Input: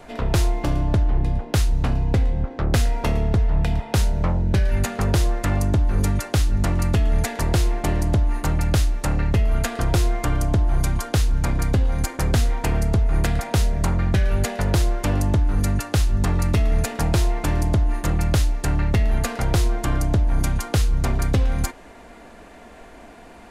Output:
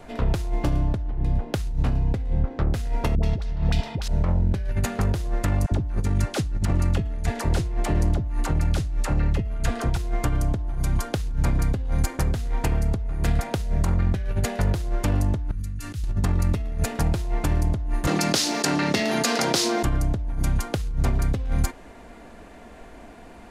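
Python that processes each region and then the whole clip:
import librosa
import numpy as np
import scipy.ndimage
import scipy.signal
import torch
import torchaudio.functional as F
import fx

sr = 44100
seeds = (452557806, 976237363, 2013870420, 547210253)

y = fx.chain(x, sr, fx.peak_eq(hz=4600.0, db=12.0, octaves=1.7),
    fx.dispersion(late='highs', ms=80.0, hz=500.0), at=(3.15, 4.08))
y = fx.chain(y, sr, fx.lowpass(hz=11000.0, slope=12),
    fx.dispersion(late='lows', ms=56.0, hz=610.0), at=(5.66, 9.97))
y = fx.chain(y, sr, fx.tone_stack(knobs='6-0-2'),
    fx.sustainer(db_per_s=24.0), at=(15.51, 16.04))
y = fx.chain(y, sr, fx.highpass(hz=210.0, slope=24),
    fx.peak_eq(hz=5000.0, db=12.0, octaves=1.3),
    fx.env_flatten(amount_pct=70), at=(18.07, 19.83))
y = fx.low_shelf(y, sr, hz=340.0, db=4.5)
y = fx.over_compress(y, sr, threshold_db=-16.0, ratio=-0.5)
y = y * 10.0 ** (-5.0 / 20.0)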